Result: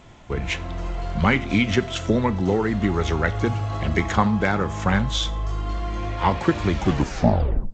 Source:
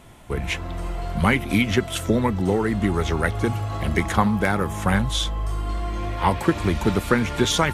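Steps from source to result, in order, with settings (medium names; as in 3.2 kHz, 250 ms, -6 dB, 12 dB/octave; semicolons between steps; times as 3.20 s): tape stop on the ending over 1.00 s; Schroeder reverb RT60 0.43 s, combs from 26 ms, DRR 16.5 dB; G.722 64 kbps 16 kHz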